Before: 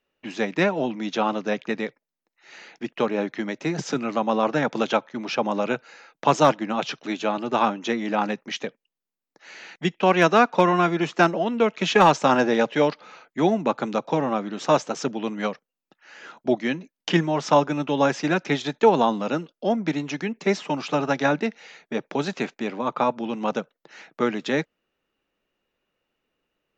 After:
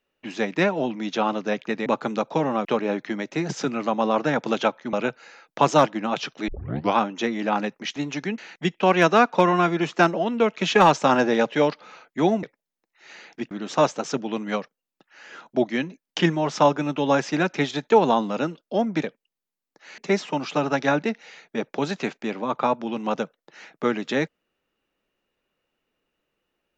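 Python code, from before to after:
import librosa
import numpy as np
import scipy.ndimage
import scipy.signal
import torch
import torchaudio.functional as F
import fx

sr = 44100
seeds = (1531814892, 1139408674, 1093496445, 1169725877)

y = fx.edit(x, sr, fx.swap(start_s=1.86, length_s=1.08, other_s=13.63, other_length_s=0.79),
    fx.cut(start_s=5.22, length_s=0.37),
    fx.tape_start(start_s=7.14, length_s=0.48),
    fx.swap(start_s=8.62, length_s=0.96, other_s=19.93, other_length_s=0.42), tone=tone)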